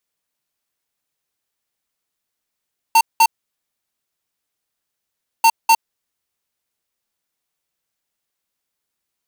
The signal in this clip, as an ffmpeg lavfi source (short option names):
-f lavfi -i "aevalsrc='0.299*(2*lt(mod(907*t,1),0.5)-1)*clip(min(mod(mod(t,2.49),0.25),0.06-mod(mod(t,2.49),0.25))/0.005,0,1)*lt(mod(t,2.49),0.5)':d=4.98:s=44100"